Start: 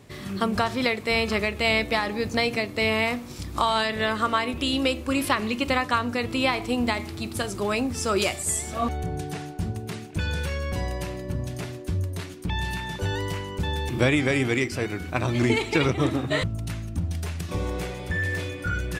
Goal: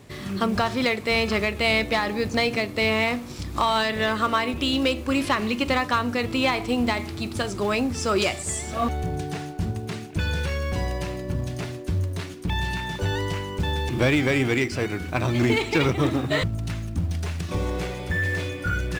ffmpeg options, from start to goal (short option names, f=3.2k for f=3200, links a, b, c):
-filter_complex "[0:a]acrossover=split=8000[a][b];[b]acompressor=threshold=-56dB:ratio=4:attack=1:release=60[c];[a][c]amix=inputs=2:normalize=0,asplit=2[d][e];[e]acrusher=bits=3:mode=log:mix=0:aa=0.000001,volume=-10.5dB[f];[d][f]amix=inputs=2:normalize=0,asoftclip=type=tanh:threshold=-11.5dB"